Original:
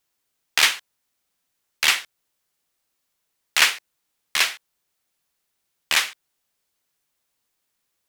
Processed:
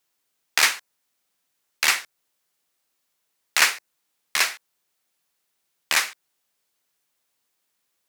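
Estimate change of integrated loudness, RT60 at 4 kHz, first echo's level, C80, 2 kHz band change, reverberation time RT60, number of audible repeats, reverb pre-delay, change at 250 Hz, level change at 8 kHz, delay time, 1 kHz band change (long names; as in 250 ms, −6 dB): −1.5 dB, no reverb audible, no echo audible, no reverb audible, −0.5 dB, no reverb audible, no echo audible, no reverb audible, −0.5 dB, +0.5 dB, no echo audible, +0.5 dB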